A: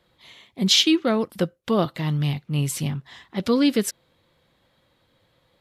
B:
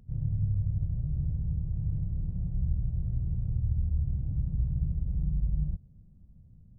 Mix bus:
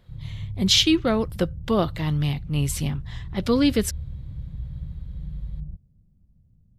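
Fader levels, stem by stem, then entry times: -0.5, -4.5 dB; 0.00, 0.00 s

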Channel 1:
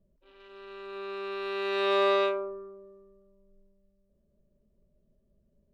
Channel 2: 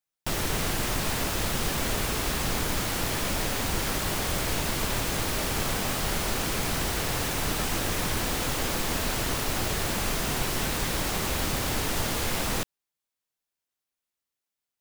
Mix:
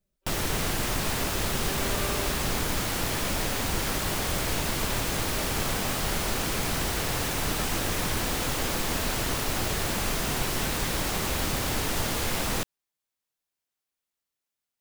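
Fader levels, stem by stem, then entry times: -12.0, 0.0 dB; 0.00, 0.00 s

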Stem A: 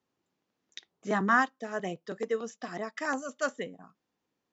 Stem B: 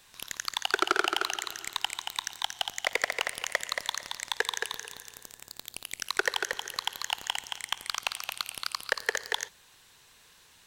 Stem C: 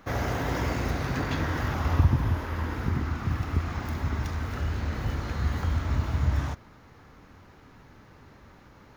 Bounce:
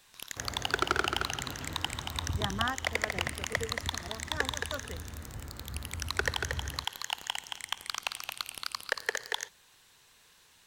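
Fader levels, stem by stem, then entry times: -9.0, -3.0, -13.5 dB; 1.30, 0.00, 0.30 s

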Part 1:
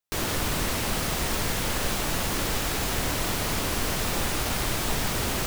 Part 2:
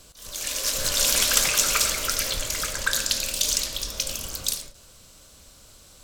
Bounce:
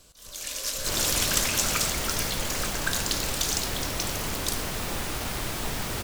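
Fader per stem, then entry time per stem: -4.0, -5.0 dB; 0.75, 0.00 s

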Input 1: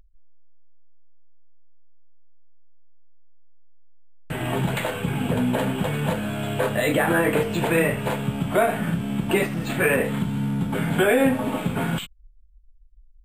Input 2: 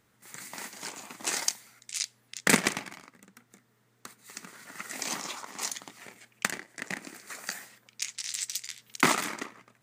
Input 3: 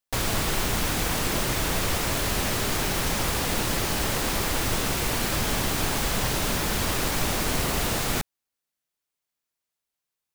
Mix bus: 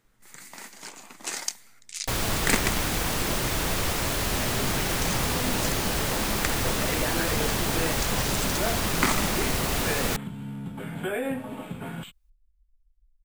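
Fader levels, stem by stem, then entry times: -11.0, -2.0, -1.0 dB; 0.05, 0.00, 1.95 s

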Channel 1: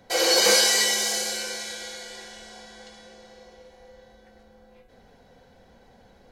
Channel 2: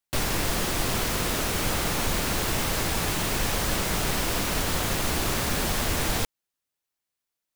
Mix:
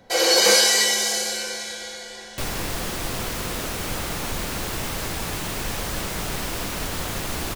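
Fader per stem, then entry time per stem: +2.5, -2.0 dB; 0.00, 2.25 s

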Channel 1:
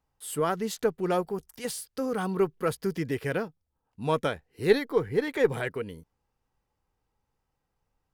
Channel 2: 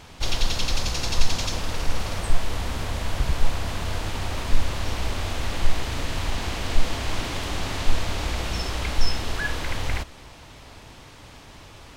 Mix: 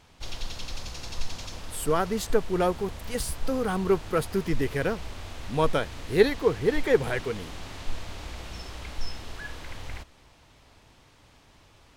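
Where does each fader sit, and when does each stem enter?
+2.0, -11.5 dB; 1.50, 0.00 s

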